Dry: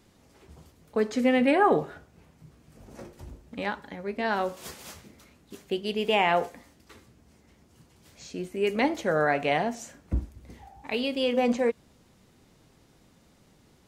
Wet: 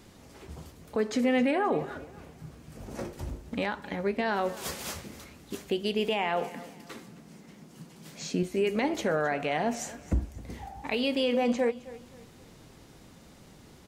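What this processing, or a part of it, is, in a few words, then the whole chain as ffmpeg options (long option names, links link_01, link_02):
stacked limiters: -filter_complex "[0:a]asettb=1/sr,asplit=3[link_01][link_02][link_03];[link_01]atrim=end=6.424[link_04];[link_02]atrim=start=6.42:end=8.43,asetpts=PTS-STARTPTS,afade=type=in:duration=0.004:curve=qsin,afade=type=out:start_time=2.006:duration=0.004:curve=qsin,lowshelf=frequency=120:width_type=q:width=3:gain=-10.5[link_05];[link_03]atrim=start=8.426[link_06];[link_04][link_05]acrossfade=duration=0.004:curve1=hsin:curve2=qsin[link_07];[link_07][link_06]acrossfade=duration=0.004:curve1=qsin:curve2=hsin,alimiter=limit=-15dB:level=0:latency=1:release=325,alimiter=limit=-20.5dB:level=0:latency=1:release=168,alimiter=level_in=1dB:limit=-24dB:level=0:latency=1:release=432,volume=-1dB,aecho=1:1:265|530|795:0.126|0.0441|0.0154,volume=7dB"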